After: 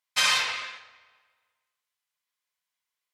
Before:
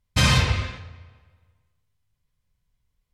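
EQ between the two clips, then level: HPF 1000 Hz 12 dB/oct; 0.0 dB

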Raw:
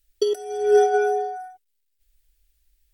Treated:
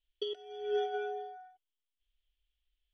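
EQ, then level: ladder low-pass 3400 Hz, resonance 75%; -4.5 dB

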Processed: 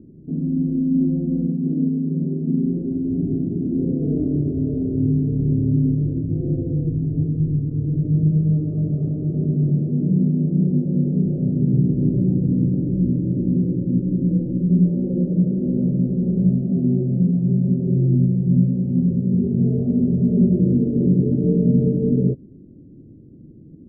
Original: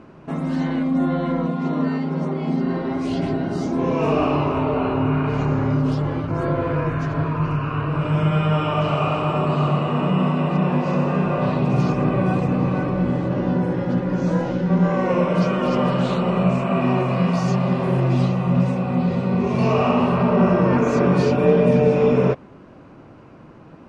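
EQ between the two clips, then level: inverse Chebyshev low-pass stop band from 900 Hz, stop band 50 dB; air absorption 240 m; +2.5 dB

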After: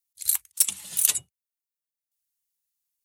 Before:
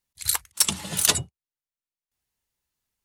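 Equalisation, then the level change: pre-emphasis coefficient 0.9; dynamic EQ 2400 Hz, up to +4 dB, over -46 dBFS, Q 3; dynamic EQ 5000 Hz, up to -6 dB, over -40 dBFS, Q 2.2; 0.0 dB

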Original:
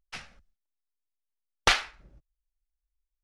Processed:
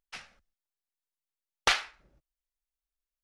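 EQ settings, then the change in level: low shelf 230 Hz -9.5 dB; -2.5 dB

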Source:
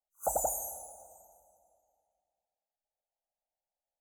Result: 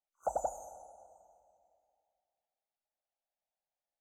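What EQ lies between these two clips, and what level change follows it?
air absorption 170 m; low shelf 330 Hz -7 dB; 0.0 dB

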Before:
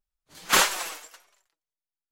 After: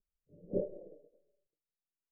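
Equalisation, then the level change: rippled Chebyshev low-pass 600 Hz, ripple 6 dB; +1.0 dB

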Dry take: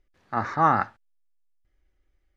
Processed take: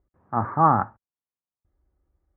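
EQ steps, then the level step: HPF 66 Hz; ladder low-pass 1300 Hz, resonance 40%; low shelf 240 Hz +11 dB; +6.0 dB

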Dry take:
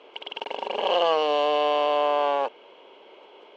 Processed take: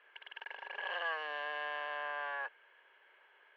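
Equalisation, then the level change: band-pass 1700 Hz, Q 15; +8.5 dB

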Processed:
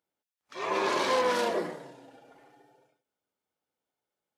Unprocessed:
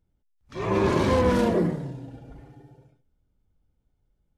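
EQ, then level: HPF 580 Hz 12 dB/oct; dynamic EQ 4500 Hz, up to +4 dB, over -50 dBFS, Q 1.1; 0.0 dB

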